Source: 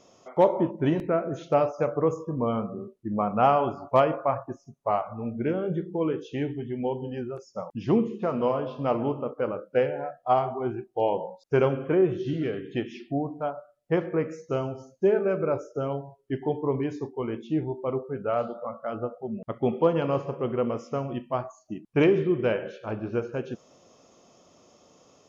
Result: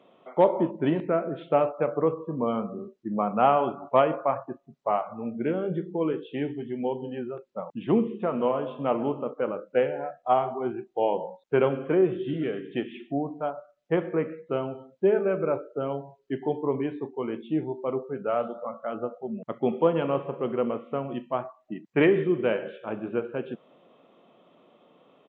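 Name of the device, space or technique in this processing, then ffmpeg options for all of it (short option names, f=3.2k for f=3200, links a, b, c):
Bluetooth headset: -filter_complex "[0:a]asettb=1/sr,asplit=3[a][b][c];[a]atrim=end=21.594[d];[b]atrim=start=21.59:end=22.24,asetpts=PTS-STARTPTS,afade=t=in:d=0.004:c=qsin,afade=t=out:st=0.646:d=0.004:c=qsin,equalizer=f=1.9k:t=o:w=0.23:g=10.5[e];[c]atrim=start=22.236[f];[d][e]acrossfade=d=0.004:c1=hsin:c2=qsin[g];[g][f]acrossfade=d=0.004:c1=qsin:c2=hsin,highpass=f=150:w=0.5412,highpass=f=150:w=1.3066,aresample=8000,aresample=44100" -ar 16000 -c:a sbc -b:a 64k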